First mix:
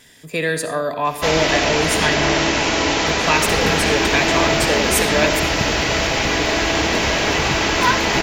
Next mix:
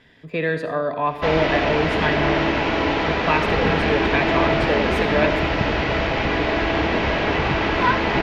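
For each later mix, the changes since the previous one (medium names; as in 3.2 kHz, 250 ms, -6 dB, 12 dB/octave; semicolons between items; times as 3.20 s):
master: add distance through air 350 m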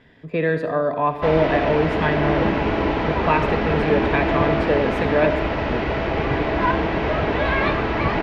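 speech +3.0 dB; second sound: entry -1.20 s; master: add treble shelf 2.3 kHz -10.5 dB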